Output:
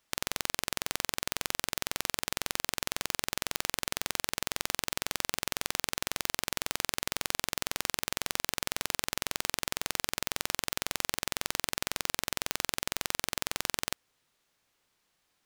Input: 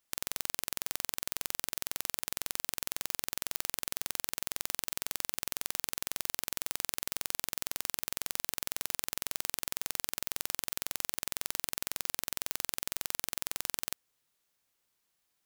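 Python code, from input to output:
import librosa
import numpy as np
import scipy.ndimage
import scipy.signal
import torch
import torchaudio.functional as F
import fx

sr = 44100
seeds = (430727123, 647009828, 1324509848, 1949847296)

y = fx.high_shelf(x, sr, hz=7900.0, db=-12.0)
y = F.gain(torch.from_numpy(y), 8.0).numpy()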